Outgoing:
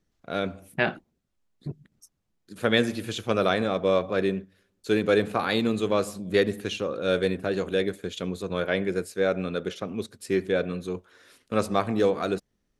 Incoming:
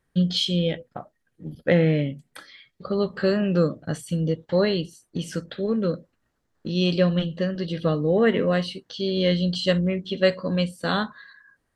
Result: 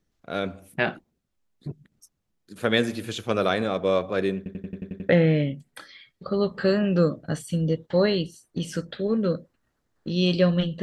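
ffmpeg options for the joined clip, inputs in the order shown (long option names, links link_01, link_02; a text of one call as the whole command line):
ffmpeg -i cue0.wav -i cue1.wav -filter_complex "[0:a]apad=whole_dur=10.82,atrim=end=10.82,asplit=8[link_01][link_02][link_03][link_04][link_05][link_06][link_07][link_08];[link_01]atrim=end=4.462[link_09];[link_02]atrim=start=4.368:end=4.462[link_10];[link_03]atrim=start=4.368:end=4.462[link_11];[link_04]atrim=start=4.368:end=4.462[link_12];[link_05]atrim=start=4.368:end=4.462[link_13];[link_06]atrim=start=4.368:end=4.462[link_14];[link_07]atrim=start=4.368:end=4.462[link_15];[link_08]atrim=start=4.368:end=4.462[link_16];[1:a]atrim=start=1.678:end=7.41[link_17];[link_09][link_10]acrossfade=duration=0.004:curve1=hsin:curve2=hsin[link_18];[link_18][link_11]acrossfade=duration=0.004:curve1=hsin:curve2=hsin[link_19];[link_19][link_12]acrossfade=duration=0.004:curve1=hsin:curve2=hsin[link_20];[link_20][link_13]acrossfade=duration=0.004:curve1=hsin:curve2=hsin[link_21];[link_21][link_14]acrossfade=duration=0.004:curve1=hsin:curve2=hsin[link_22];[link_22][link_15]acrossfade=duration=0.004:curve1=hsin:curve2=hsin[link_23];[link_23][link_16]acrossfade=duration=0.004:curve1=hsin:curve2=hsin[link_24];[link_24][link_17]acrossfade=duration=0.004:curve1=hsin:curve2=hsin" out.wav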